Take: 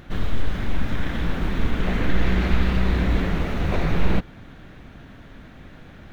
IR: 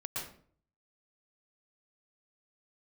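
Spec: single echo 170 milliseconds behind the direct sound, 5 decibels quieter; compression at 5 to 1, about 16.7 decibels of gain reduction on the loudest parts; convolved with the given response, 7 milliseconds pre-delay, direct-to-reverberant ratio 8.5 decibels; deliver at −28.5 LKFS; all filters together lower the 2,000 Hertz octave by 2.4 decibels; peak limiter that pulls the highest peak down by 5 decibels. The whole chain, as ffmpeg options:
-filter_complex "[0:a]equalizer=frequency=2000:width_type=o:gain=-3,acompressor=threshold=-32dB:ratio=5,alimiter=level_in=3.5dB:limit=-24dB:level=0:latency=1,volume=-3.5dB,aecho=1:1:170:0.562,asplit=2[link_01][link_02];[1:a]atrim=start_sample=2205,adelay=7[link_03];[link_02][link_03]afir=irnorm=-1:irlink=0,volume=-10.5dB[link_04];[link_01][link_04]amix=inputs=2:normalize=0,volume=11.5dB"

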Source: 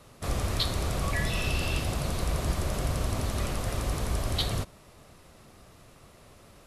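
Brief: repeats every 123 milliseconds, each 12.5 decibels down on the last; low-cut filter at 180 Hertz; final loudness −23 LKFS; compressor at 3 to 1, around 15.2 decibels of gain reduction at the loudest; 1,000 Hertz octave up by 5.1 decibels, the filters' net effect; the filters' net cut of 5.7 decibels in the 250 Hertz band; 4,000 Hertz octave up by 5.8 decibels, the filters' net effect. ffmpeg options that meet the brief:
ffmpeg -i in.wav -af "highpass=180,equalizer=frequency=250:width_type=o:gain=-6,equalizer=frequency=1000:width_type=o:gain=6.5,equalizer=frequency=4000:width_type=o:gain=6.5,acompressor=threshold=-41dB:ratio=3,aecho=1:1:123|246|369:0.237|0.0569|0.0137,volume=16.5dB" out.wav

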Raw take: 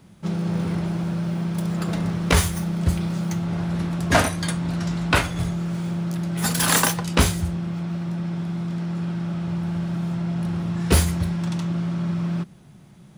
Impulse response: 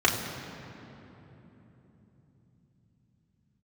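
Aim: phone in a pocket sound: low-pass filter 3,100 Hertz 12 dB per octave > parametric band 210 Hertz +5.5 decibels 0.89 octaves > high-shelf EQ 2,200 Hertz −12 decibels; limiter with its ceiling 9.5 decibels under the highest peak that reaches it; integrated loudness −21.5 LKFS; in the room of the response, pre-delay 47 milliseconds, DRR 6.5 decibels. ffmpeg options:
-filter_complex "[0:a]alimiter=limit=-14dB:level=0:latency=1,asplit=2[link_01][link_02];[1:a]atrim=start_sample=2205,adelay=47[link_03];[link_02][link_03]afir=irnorm=-1:irlink=0,volume=-22.5dB[link_04];[link_01][link_04]amix=inputs=2:normalize=0,lowpass=3100,equalizer=frequency=210:width_type=o:width=0.89:gain=5.5,highshelf=frequency=2200:gain=-12,volume=-5dB"

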